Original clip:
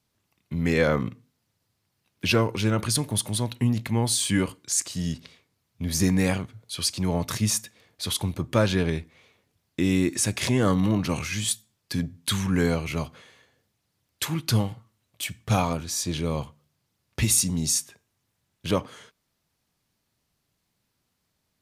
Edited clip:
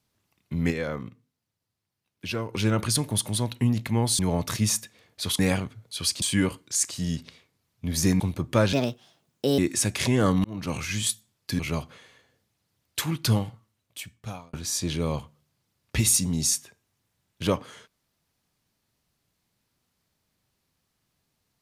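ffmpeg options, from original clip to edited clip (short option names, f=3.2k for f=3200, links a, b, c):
-filter_complex "[0:a]asplit=12[a][b][c][d][e][f][g][h][i][j][k][l];[a]atrim=end=0.84,asetpts=PTS-STARTPTS,afade=t=out:st=0.7:d=0.14:c=exp:silence=0.354813[m];[b]atrim=start=0.84:end=2.41,asetpts=PTS-STARTPTS,volume=-9dB[n];[c]atrim=start=2.41:end=4.192,asetpts=PTS-STARTPTS,afade=t=in:d=0.14:c=exp:silence=0.354813[o];[d]atrim=start=6.998:end=8.202[p];[e]atrim=start=6.168:end=7.002[q];[f]atrim=start=4.188:end=6.172[r];[g]atrim=start=8.198:end=8.734[s];[h]atrim=start=8.73:end=10,asetpts=PTS-STARTPTS,asetrate=65709,aresample=44100[t];[i]atrim=start=9.996:end=10.86,asetpts=PTS-STARTPTS,afade=t=out:st=0.86:d=0.004:c=hsin[u];[j]atrim=start=10.86:end=12.012,asetpts=PTS-STARTPTS,afade=t=in:d=0.54:c=qsin[v];[k]atrim=start=12.828:end=15.77,asetpts=PTS-STARTPTS,afade=t=out:st=1.782:d=1.16[w];[l]atrim=start=15.77,asetpts=PTS-STARTPTS,afade=t=in:d=0.004:c=hsin[x];[m][n][o]concat=n=3:v=0:a=1[y];[y][p]acrossfade=d=0.004:c1=hsin:c2=hsin[z];[z][q]acrossfade=d=0.004:c1=hsin:c2=hsin[aa];[aa][r]acrossfade=d=0.004:c1=hsin:c2=hsin[ab];[ab][s]acrossfade=d=0.004:c1=hsin:c2=hsin[ac];[ac][t]acrossfade=d=0.004:c1=hsin:c2=hsin[ad];[u][v]concat=n=2:v=0:a=1[ae];[ad][ae]acrossfade=d=0.004:c1=hsin:c2=hsin[af];[w][x]concat=n=2:v=0:a=1[ag];[af][ag]acrossfade=d=0.004:c1=hsin:c2=hsin"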